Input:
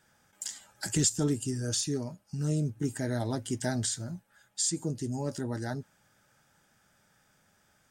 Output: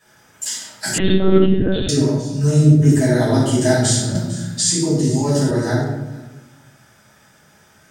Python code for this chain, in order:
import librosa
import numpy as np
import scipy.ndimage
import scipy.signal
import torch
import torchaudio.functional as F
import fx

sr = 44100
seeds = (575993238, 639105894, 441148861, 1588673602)

y = fx.highpass(x, sr, hz=130.0, slope=6)
y = y + 10.0 ** (-22.5 / 20.0) * np.pad(y, (int(451 * sr / 1000.0), 0))[:len(y)]
y = fx.room_shoebox(y, sr, seeds[0], volume_m3=340.0, walls='mixed', distance_m=5.9)
y = fx.lpc_monotone(y, sr, seeds[1], pitch_hz=190.0, order=16, at=(0.98, 1.89))
y = fx.band_squash(y, sr, depth_pct=40, at=(4.15, 5.51))
y = F.gain(torch.from_numpy(y), 2.5).numpy()